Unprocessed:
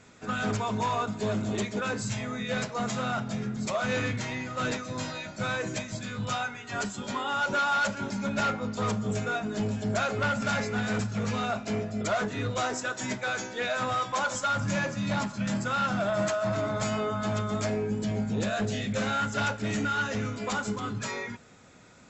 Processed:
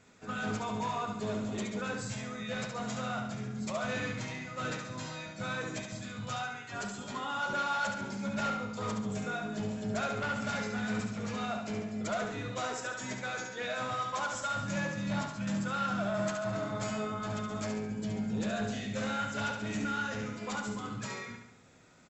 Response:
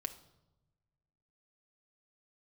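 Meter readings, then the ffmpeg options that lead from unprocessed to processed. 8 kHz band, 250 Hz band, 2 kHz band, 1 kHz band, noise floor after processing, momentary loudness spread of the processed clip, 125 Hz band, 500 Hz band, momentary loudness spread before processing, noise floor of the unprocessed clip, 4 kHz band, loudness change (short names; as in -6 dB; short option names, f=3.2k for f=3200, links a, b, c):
-5.5 dB, -4.5 dB, -5.5 dB, -5.5 dB, -46 dBFS, 6 LU, -6.5 dB, -6.0 dB, 6 LU, -42 dBFS, -5.5 dB, -5.5 dB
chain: -af "aecho=1:1:70|140|210|280|350|420:0.531|0.26|0.127|0.0625|0.0306|0.015,volume=-7dB"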